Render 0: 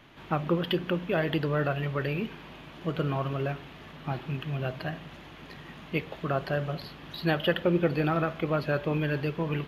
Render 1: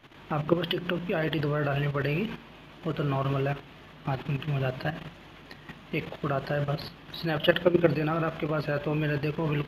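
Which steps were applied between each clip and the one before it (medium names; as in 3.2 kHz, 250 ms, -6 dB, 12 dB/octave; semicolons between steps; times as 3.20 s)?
level held to a coarse grid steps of 11 dB; de-hum 57.86 Hz, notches 4; trim +6 dB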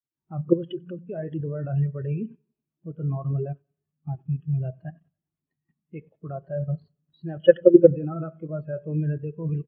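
feedback delay 93 ms, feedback 59%, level -15 dB; spectral contrast expander 2.5:1; trim +5.5 dB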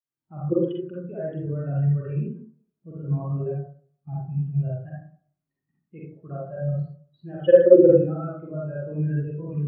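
reverberation RT60 0.50 s, pre-delay 37 ms, DRR -6 dB; trim -6.5 dB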